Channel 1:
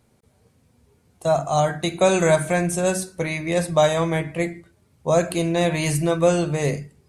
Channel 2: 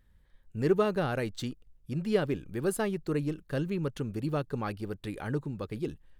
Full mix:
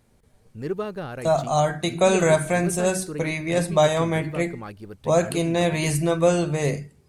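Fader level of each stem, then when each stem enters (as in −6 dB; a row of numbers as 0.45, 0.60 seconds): −1.0, −3.0 decibels; 0.00, 0.00 seconds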